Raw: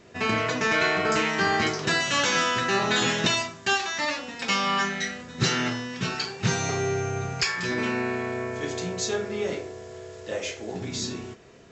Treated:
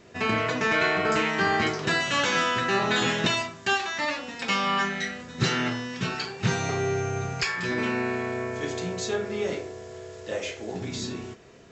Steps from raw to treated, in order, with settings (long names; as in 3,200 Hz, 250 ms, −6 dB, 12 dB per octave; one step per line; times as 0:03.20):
dynamic equaliser 5,900 Hz, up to −6 dB, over −42 dBFS, Q 1.3